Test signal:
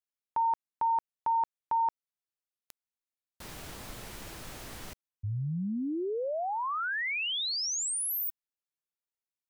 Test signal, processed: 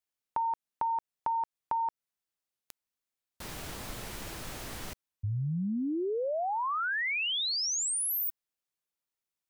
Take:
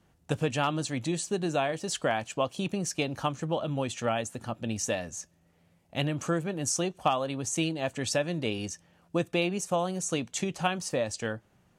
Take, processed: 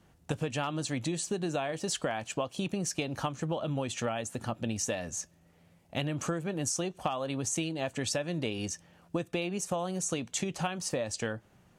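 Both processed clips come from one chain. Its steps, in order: compression, threshold -32 dBFS; trim +3 dB

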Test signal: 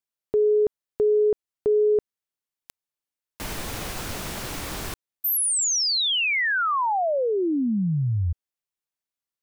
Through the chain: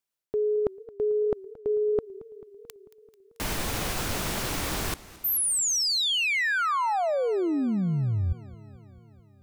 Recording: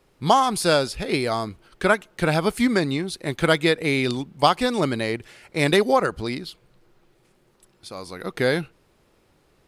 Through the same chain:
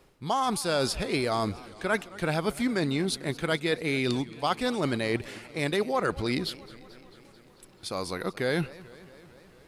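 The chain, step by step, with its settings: reverse; compression 6:1, threshold -28 dBFS; reverse; modulated delay 220 ms, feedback 69%, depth 167 cents, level -20 dB; trim +3.5 dB

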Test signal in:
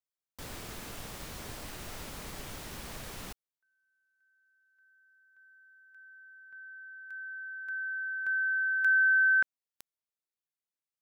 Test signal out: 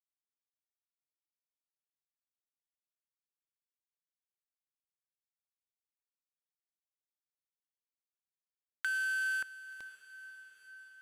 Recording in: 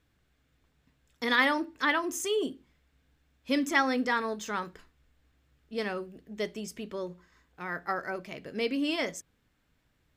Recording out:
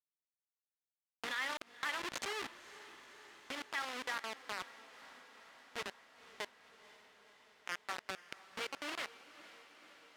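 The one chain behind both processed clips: send-on-delta sampling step -23.5 dBFS; peak limiter -23 dBFS; compression, threshold -32 dBFS; band-pass filter 2.6 kHz, Q 0.68; on a send: echo that smears into a reverb 506 ms, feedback 71%, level -16 dB; on the sum: trim +1.5 dB

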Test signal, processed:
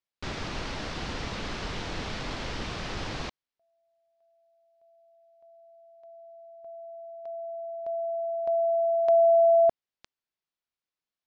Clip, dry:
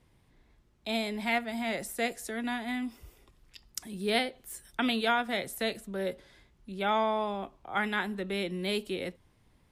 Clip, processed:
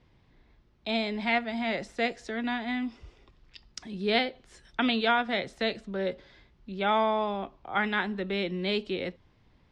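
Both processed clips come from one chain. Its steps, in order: low-pass 5.3 kHz 24 dB/octave; trim +2.5 dB

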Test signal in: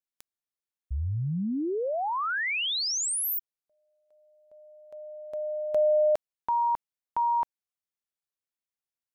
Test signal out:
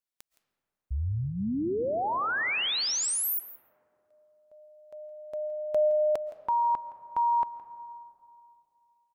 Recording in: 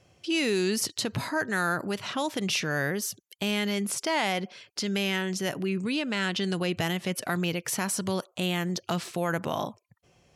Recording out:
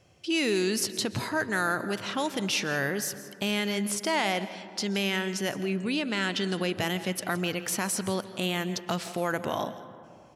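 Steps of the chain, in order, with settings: dynamic bell 160 Hz, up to -7 dB, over -48 dBFS, Q 5.4; on a send: delay 167 ms -17.5 dB; on the sum: algorithmic reverb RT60 2.7 s, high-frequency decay 0.35×, pre-delay 95 ms, DRR 14 dB

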